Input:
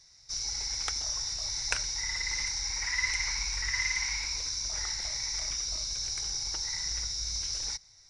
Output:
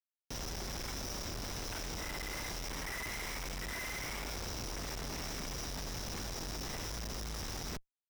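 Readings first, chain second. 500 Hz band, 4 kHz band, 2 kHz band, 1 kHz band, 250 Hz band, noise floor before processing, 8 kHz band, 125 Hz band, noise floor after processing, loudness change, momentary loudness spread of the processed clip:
+9.5 dB, −12.0 dB, −9.0 dB, +1.5 dB, can't be measured, −58 dBFS, −12.5 dB, +2.5 dB, below −85 dBFS, −9.5 dB, 2 LU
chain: comparator with hysteresis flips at −32 dBFS
notch filter 4,400 Hz, Q 16
level −6.5 dB

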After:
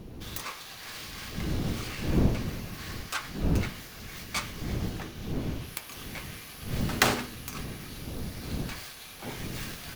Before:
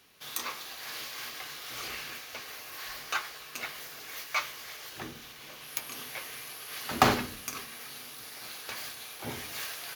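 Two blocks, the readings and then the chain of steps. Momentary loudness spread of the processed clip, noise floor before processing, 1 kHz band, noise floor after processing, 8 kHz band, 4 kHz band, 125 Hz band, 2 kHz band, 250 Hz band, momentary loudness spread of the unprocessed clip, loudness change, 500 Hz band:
13 LU, −47 dBFS, −3.5 dB, −45 dBFS, 0.0 dB, 0.0 dB, +13.5 dB, 0.0 dB, +8.0 dB, 9 LU, +2.0 dB, +2.5 dB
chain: phase distortion by the signal itself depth 0.67 ms
wind on the microphone 200 Hz −34 dBFS

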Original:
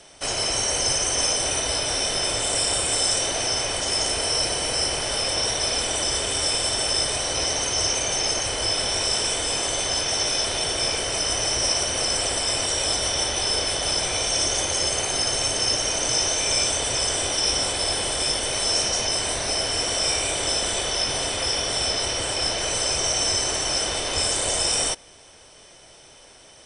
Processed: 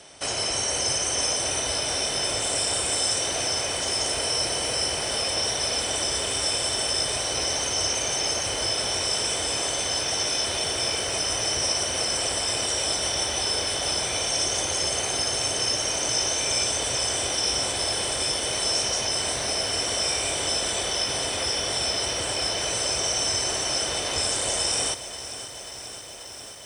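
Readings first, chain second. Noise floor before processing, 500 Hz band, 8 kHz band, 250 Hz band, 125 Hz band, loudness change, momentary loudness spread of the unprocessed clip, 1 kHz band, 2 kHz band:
−49 dBFS, −2.0 dB, −2.0 dB, −2.0 dB, −2.5 dB, −2.0 dB, 2 LU, −2.0 dB, −2.0 dB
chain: in parallel at −1.5 dB: downward compressor, threshold −31 dBFS, peak gain reduction 12 dB
on the sum: high-pass filter 57 Hz
feedback echo at a low word length 536 ms, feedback 80%, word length 7 bits, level −13.5 dB
level −4.5 dB

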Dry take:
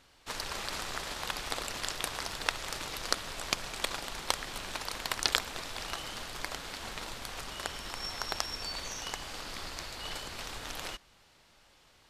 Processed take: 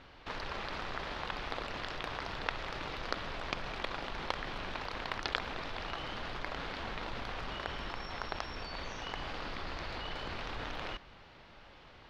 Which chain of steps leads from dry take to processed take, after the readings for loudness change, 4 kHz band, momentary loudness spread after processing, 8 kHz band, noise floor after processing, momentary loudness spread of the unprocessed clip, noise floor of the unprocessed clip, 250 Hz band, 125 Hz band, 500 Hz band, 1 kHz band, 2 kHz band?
−4.0 dB, −6.5 dB, 4 LU, −19.5 dB, −56 dBFS, 7 LU, −63 dBFS, +2.0 dB, +2.5 dB, +0.5 dB, 0.0 dB, −1.5 dB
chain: in parallel at +2 dB: compressor whose output falls as the input rises −46 dBFS, ratio −1
on the sum: high-frequency loss of the air 280 metres
level −2 dB

